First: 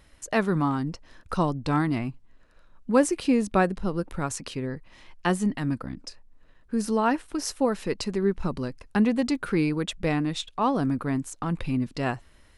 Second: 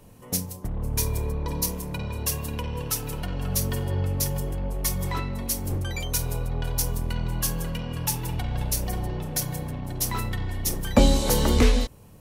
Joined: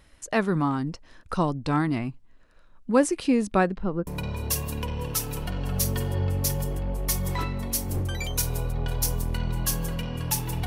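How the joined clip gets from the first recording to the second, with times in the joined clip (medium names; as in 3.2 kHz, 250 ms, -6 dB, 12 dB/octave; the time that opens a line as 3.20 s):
first
3.63–4.07 s: low-pass 6.1 kHz -> 1 kHz
4.07 s: go over to second from 1.83 s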